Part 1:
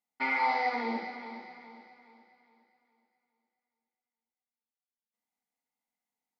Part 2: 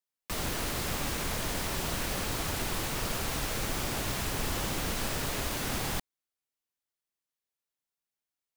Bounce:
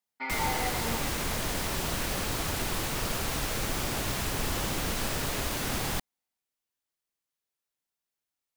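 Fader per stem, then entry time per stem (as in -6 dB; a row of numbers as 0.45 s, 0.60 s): -4.5 dB, +1.5 dB; 0.00 s, 0.00 s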